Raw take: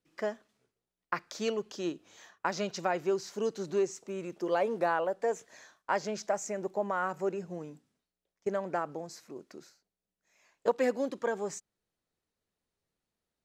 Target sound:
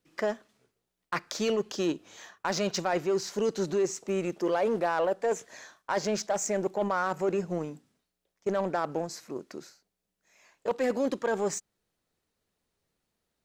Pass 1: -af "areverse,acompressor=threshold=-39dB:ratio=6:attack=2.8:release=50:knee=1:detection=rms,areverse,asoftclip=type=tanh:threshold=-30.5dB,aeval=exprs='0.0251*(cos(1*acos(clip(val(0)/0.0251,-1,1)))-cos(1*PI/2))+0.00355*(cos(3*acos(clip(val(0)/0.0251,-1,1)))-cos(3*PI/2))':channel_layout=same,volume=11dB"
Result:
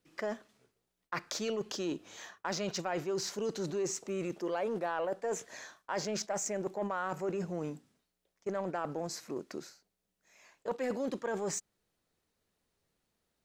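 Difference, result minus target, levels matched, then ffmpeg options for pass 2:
downward compressor: peak gain reduction +6 dB
-af "areverse,acompressor=threshold=-31.5dB:ratio=6:attack=2.8:release=50:knee=1:detection=rms,areverse,asoftclip=type=tanh:threshold=-30.5dB,aeval=exprs='0.0251*(cos(1*acos(clip(val(0)/0.0251,-1,1)))-cos(1*PI/2))+0.00355*(cos(3*acos(clip(val(0)/0.0251,-1,1)))-cos(3*PI/2))':channel_layout=same,volume=11dB"

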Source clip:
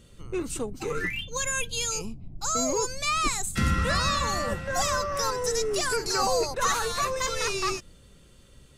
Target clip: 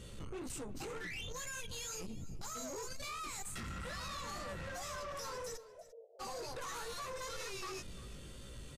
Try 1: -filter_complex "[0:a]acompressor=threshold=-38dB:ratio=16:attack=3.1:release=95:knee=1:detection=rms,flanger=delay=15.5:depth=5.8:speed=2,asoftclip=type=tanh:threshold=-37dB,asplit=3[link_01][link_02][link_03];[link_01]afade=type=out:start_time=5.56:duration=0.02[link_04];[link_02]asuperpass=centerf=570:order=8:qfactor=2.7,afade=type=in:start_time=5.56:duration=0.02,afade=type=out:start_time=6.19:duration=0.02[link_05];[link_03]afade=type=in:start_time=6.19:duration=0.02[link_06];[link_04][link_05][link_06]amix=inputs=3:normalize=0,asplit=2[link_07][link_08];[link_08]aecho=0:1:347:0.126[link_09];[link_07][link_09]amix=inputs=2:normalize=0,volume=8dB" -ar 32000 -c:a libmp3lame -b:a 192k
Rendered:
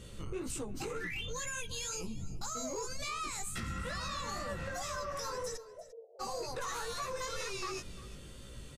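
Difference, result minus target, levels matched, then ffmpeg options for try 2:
soft clipping: distortion −13 dB
-filter_complex "[0:a]acompressor=threshold=-38dB:ratio=16:attack=3.1:release=95:knee=1:detection=rms,flanger=delay=15.5:depth=5.8:speed=2,asoftclip=type=tanh:threshold=-48dB,asplit=3[link_01][link_02][link_03];[link_01]afade=type=out:start_time=5.56:duration=0.02[link_04];[link_02]asuperpass=centerf=570:order=8:qfactor=2.7,afade=type=in:start_time=5.56:duration=0.02,afade=type=out:start_time=6.19:duration=0.02[link_05];[link_03]afade=type=in:start_time=6.19:duration=0.02[link_06];[link_04][link_05][link_06]amix=inputs=3:normalize=0,asplit=2[link_07][link_08];[link_08]aecho=0:1:347:0.126[link_09];[link_07][link_09]amix=inputs=2:normalize=0,volume=8dB" -ar 32000 -c:a libmp3lame -b:a 192k

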